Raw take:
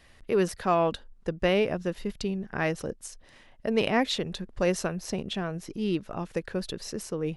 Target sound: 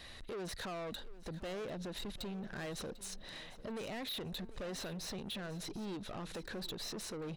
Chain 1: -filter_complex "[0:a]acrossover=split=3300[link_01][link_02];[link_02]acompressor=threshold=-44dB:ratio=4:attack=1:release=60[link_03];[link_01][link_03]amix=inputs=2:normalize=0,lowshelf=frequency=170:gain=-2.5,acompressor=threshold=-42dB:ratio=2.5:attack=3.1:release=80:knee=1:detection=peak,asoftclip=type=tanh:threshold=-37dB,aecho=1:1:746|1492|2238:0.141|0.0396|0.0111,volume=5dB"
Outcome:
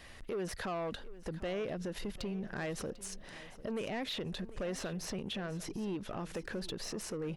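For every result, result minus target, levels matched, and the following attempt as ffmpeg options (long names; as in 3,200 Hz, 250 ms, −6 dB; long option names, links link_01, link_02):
soft clipping: distortion −7 dB; 4,000 Hz band −4.0 dB
-filter_complex "[0:a]acrossover=split=3300[link_01][link_02];[link_02]acompressor=threshold=-44dB:ratio=4:attack=1:release=60[link_03];[link_01][link_03]amix=inputs=2:normalize=0,lowshelf=frequency=170:gain=-2.5,acompressor=threshold=-42dB:ratio=2.5:attack=3.1:release=80:knee=1:detection=peak,asoftclip=type=tanh:threshold=-44.5dB,aecho=1:1:746|1492|2238:0.141|0.0396|0.0111,volume=5dB"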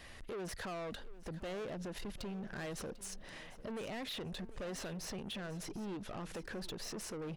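4,000 Hz band −2.5 dB
-filter_complex "[0:a]acrossover=split=3300[link_01][link_02];[link_02]acompressor=threshold=-44dB:ratio=4:attack=1:release=60[link_03];[link_01][link_03]amix=inputs=2:normalize=0,lowshelf=frequency=170:gain=-2.5,acompressor=threshold=-42dB:ratio=2.5:attack=3.1:release=80:knee=1:detection=peak,equalizer=frequency=3900:width_type=o:width=0.22:gain=13.5,asoftclip=type=tanh:threshold=-44.5dB,aecho=1:1:746|1492|2238:0.141|0.0396|0.0111,volume=5dB"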